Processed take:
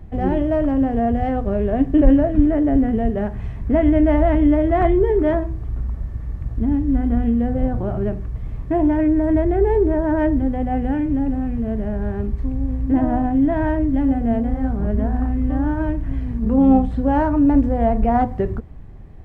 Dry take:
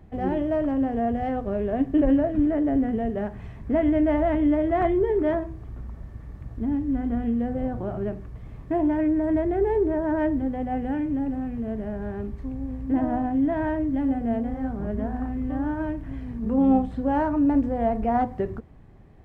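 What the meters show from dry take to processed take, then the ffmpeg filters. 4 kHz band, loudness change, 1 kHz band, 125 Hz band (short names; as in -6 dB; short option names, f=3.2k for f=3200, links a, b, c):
n/a, +6.0 dB, +4.5 dB, +10.5 dB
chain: -af "lowshelf=f=90:g=11.5,volume=4.5dB"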